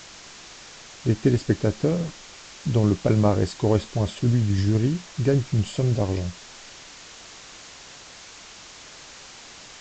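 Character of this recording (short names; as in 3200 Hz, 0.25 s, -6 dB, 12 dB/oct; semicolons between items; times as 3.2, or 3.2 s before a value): tremolo saw down 12 Hz, depth 30%; a quantiser's noise floor 6-bit, dither triangular; µ-law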